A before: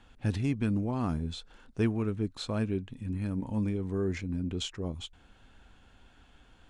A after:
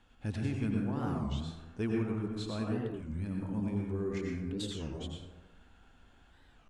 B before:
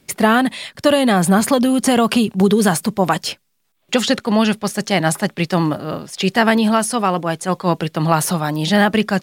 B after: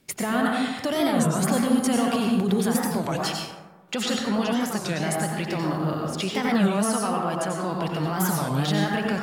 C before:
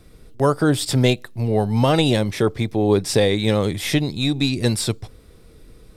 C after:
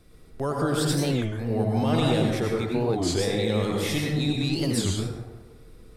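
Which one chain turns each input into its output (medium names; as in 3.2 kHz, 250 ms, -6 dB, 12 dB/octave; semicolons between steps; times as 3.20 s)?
hum notches 60/120 Hz; peak limiter -11.5 dBFS; plate-style reverb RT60 1.2 s, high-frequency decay 0.4×, pre-delay 80 ms, DRR -1.5 dB; warped record 33 1/3 rpm, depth 250 cents; trim -6.5 dB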